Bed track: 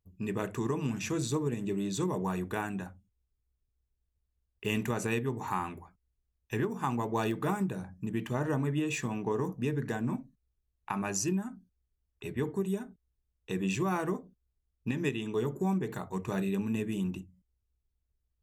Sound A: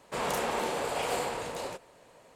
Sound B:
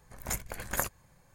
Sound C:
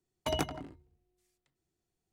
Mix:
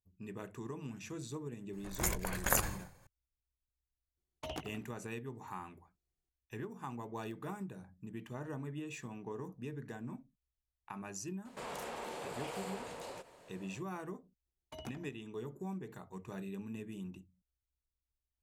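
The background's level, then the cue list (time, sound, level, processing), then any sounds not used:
bed track -12 dB
1.73 s: add B -0.5 dB + decay stretcher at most 83 dB/s
4.17 s: add C -10.5 dB + loudspeaker Doppler distortion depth 0.34 ms
11.45 s: add A -2.5 dB + compression 2:1, threshold -45 dBFS
14.46 s: add C -16.5 dB

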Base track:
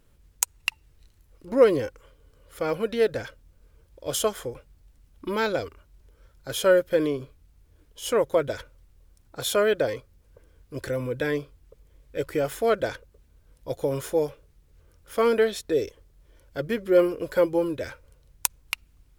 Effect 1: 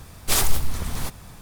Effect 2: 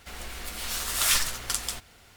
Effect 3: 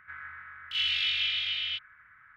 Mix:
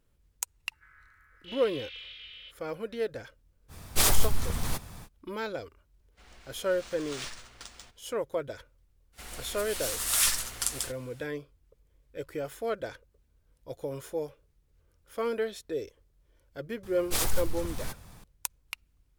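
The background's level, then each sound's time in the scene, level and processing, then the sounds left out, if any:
base track -9.5 dB
0.73 s: add 3 -15.5 dB + vibrato 2.4 Hz 11 cents
3.68 s: add 1 -2.5 dB, fades 0.05 s
6.11 s: add 2 -15 dB, fades 0.10 s + decimation joined by straight lines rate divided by 3×
9.12 s: add 2 -5 dB, fades 0.05 s + peaking EQ 10 kHz +6.5 dB 1.1 oct
16.83 s: add 1 -8 dB

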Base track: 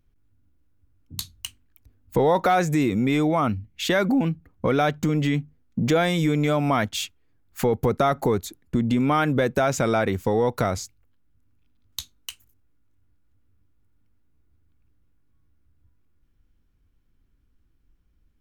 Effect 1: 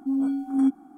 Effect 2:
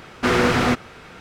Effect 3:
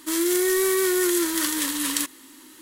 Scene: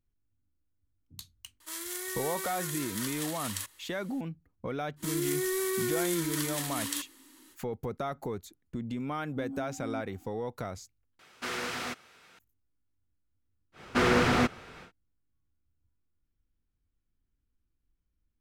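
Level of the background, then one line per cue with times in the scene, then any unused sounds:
base track -14 dB
1.60 s: add 3 -11.5 dB + high-pass 490 Hz 24 dB/octave
4.96 s: add 3 -9.5 dB, fades 0.05 s
9.31 s: add 1 -11 dB + compression 4:1, threshold -27 dBFS
11.19 s: replace with 2 -16.5 dB + tilt EQ +3 dB/octave
13.72 s: add 2 -6 dB, fades 0.10 s

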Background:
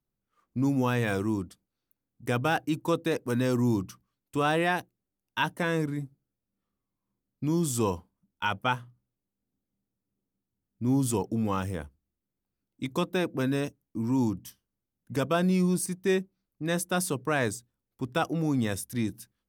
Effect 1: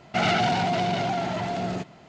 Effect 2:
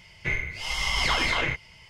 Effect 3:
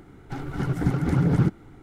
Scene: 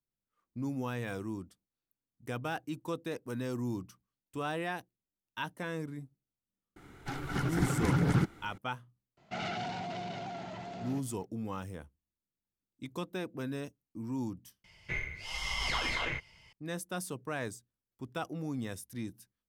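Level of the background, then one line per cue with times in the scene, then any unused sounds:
background -10 dB
6.76 s: add 3 -2 dB + tilt shelf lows -5.5 dB
9.17 s: add 1 -14.5 dB
14.64 s: replace with 2 -8.5 dB

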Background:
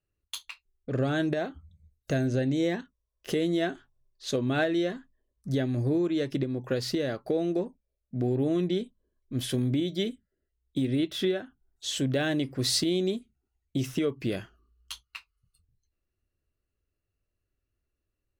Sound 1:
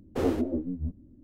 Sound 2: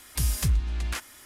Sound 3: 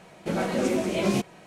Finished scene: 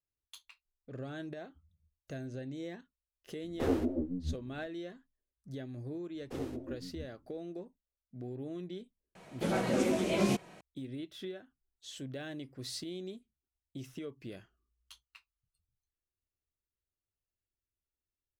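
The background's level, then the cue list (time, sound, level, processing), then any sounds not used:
background -15 dB
3.44 s: add 1 -4 dB
6.15 s: add 1 -14 dB + peaking EQ 7.9 kHz +6 dB 2.6 oct
9.15 s: add 3 -4.5 dB
not used: 2

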